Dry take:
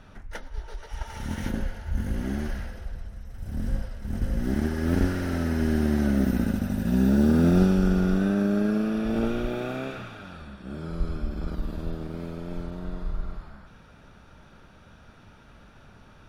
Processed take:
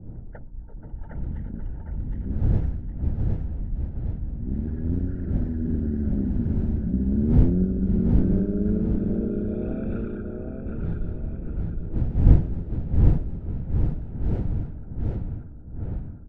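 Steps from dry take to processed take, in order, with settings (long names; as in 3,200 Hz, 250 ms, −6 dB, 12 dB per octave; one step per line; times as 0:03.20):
spectral envelope exaggerated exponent 2
wind on the microphone 100 Hz −24 dBFS
notch filter 1,100 Hz, Q 6.1
mains hum 60 Hz, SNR 24 dB
on a send: repeating echo 763 ms, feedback 44%, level −3.5 dB
on the sum: low-pass that shuts in the quiet parts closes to 560 Hz, open at −16 dBFS
level −3.5 dB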